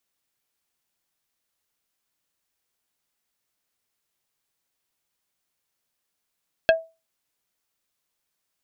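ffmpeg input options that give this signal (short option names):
-f lavfi -i "aevalsrc='0.316*pow(10,-3*t/0.27)*sin(2*PI*652*t)+0.211*pow(10,-3*t/0.09)*sin(2*PI*1630*t)+0.141*pow(10,-3*t/0.051)*sin(2*PI*2608*t)+0.0944*pow(10,-3*t/0.039)*sin(2*PI*3260*t)+0.0631*pow(10,-3*t/0.029)*sin(2*PI*4238*t)':d=0.45:s=44100"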